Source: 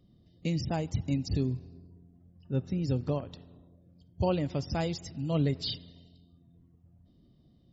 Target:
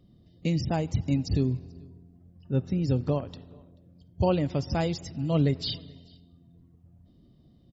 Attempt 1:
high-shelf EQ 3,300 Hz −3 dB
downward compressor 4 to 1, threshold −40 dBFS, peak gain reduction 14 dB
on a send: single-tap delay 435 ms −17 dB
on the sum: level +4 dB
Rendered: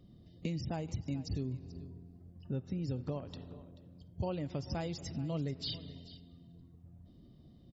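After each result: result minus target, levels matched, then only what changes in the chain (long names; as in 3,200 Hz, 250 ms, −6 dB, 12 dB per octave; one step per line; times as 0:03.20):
downward compressor: peak gain reduction +14 dB; echo-to-direct +11 dB
remove: downward compressor 4 to 1, threshold −40 dBFS, peak gain reduction 14 dB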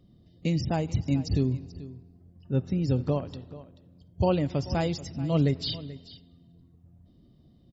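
echo-to-direct +11 dB
change: single-tap delay 435 ms −28 dB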